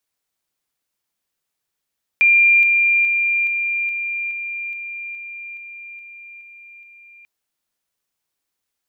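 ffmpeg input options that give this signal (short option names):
-f lavfi -i "aevalsrc='pow(10,(-9.5-3*floor(t/0.42))/20)*sin(2*PI*2390*t)':d=5.04:s=44100"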